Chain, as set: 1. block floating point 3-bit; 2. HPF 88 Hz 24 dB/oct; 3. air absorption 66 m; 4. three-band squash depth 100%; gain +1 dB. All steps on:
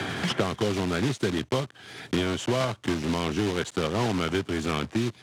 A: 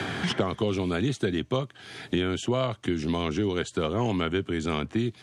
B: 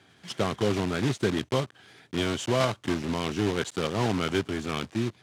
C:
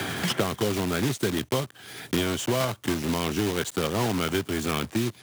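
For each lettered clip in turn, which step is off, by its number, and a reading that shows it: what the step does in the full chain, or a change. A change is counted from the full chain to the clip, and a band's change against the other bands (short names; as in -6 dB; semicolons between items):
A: 1, distortion -9 dB; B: 4, momentary loudness spread change +2 LU; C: 3, 8 kHz band +5.5 dB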